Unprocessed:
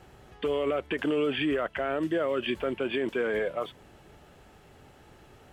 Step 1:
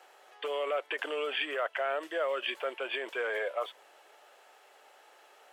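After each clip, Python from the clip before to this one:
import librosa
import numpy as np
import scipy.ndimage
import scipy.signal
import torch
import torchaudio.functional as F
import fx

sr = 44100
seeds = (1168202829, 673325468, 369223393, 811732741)

y = scipy.signal.sosfilt(scipy.signal.butter(4, 530.0, 'highpass', fs=sr, output='sos'), x)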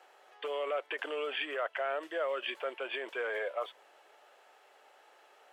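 y = fx.high_shelf(x, sr, hz=5200.0, db=-6.0)
y = F.gain(torch.from_numpy(y), -2.0).numpy()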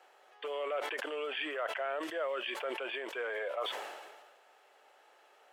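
y = fx.sustainer(x, sr, db_per_s=38.0)
y = F.gain(torch.from_numpy(y), -2.0).numpy()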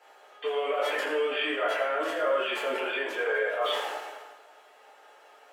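y = fx.rev_fdn(x, sr, rt60_s=1.0, lf_ratio=0.8, hf_ratio=0.7, size_ms=66.0, drr_db=-7.5)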